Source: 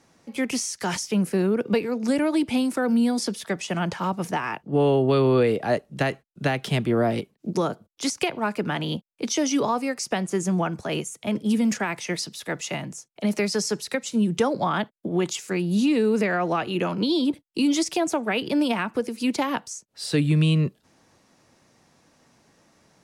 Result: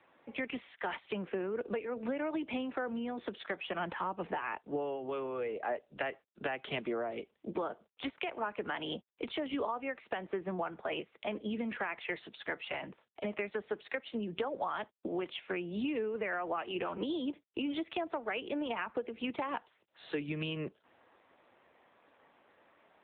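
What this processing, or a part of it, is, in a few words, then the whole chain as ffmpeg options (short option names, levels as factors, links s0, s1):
voicemail: -filter_complex "[0:a]asplit=3[s0][s1][s2];[s0]afade=t=out:st=3.78:d=0.02[s3];[s1]lowshelf=f=340:g=5.5,afade=t=in:st=3.78:d=0.02,afade=t=out:st=4.57:d=0.02[s4];[s2]afade=t=in:st=4.57:d=0.02[s5];[s3][s4][s5]amix=inputs=3:normalize=0,highpass=420,lowpass=3200,acompressor=threshold=0.0251:ratio=6" -ar 8000 -c:a libopencore_amrnb -b:a 7950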